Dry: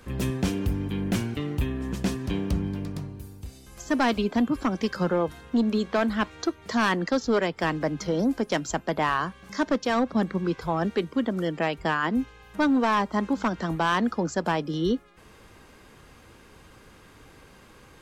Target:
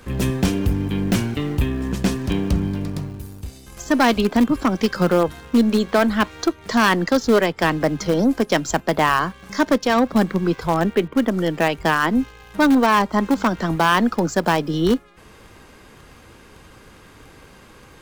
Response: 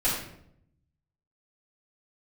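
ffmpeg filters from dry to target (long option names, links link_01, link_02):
-filter_complex "[0:a]asettb=1/sr,asplit=3[link_01][link_02][link_03];[link_01]atrim=end=10.804[link_04];[link_02]atrim=start=10.8:end=11.31,asetpts=PTS-STARTPTS,afade=type=in:duration=0.004:curve=qsin,afade=type=out:start_time=0.506:duration=0.004:curve=qsin,lowpass=frequency=3300:width=0.5412,lowpass=frequency=3300:width=1.3066[link_05];[link_03]atrim=start=11.306[link_06];[link_04][link_05]acrossfade=duration=0.004:curve1=hsin:curve2=qsin[link_07];[link_07][link_06]acrossfade=duration=0.004:curve1=qsin:curve2=hsin,asplit=2[link_08][link_09];[link_09]acrusher=bits=4:dc=4:mix=0:aa=0.000001,volume=-12dB[link_10];[link_08][link_10]amix=inputs=2:normalize=0,volume=5.5dB"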